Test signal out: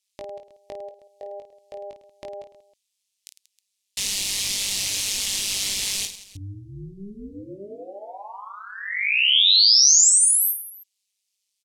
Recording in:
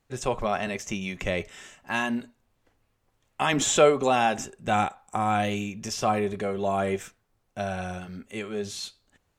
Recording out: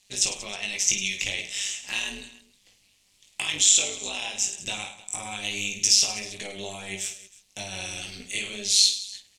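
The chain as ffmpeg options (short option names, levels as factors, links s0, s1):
-filter_complex "[0:a]acompressor=threshold=0.02:ratio=12,lowpass=8900,tremolo=f=200:d=0.824,aexciter=amount=14:drive=3.2:freq=2200,asplit=2[s0][s1];[s1]aecho=0:1:20|52|103.2|185.1|316.2:0.631|0.398|0.251|0.158|0.1[s2];[s0][s2]amix=inputs=2:normalize=0,volume=0.891"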